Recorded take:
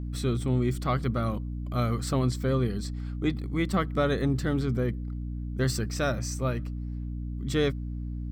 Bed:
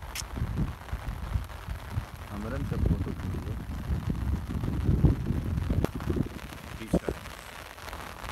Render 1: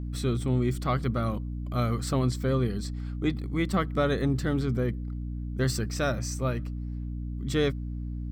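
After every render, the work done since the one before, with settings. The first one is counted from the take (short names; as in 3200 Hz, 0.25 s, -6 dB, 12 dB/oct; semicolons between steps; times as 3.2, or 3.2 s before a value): nothing audible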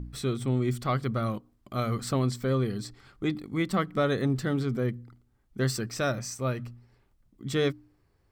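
de-hum 60 Hz, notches 5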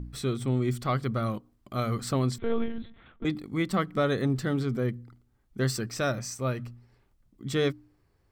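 2.38–3.25 monotone LPC vocoder at 8 kHz 230 Hz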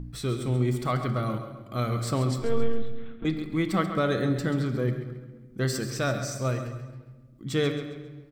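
on a send: feedback echo 0.135 s, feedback 39%, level -11 dB; on the sum: shoebox room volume 1100 m³, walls mixed, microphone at 0.64 m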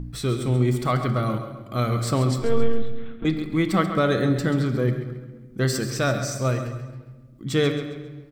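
gain +4.5 dB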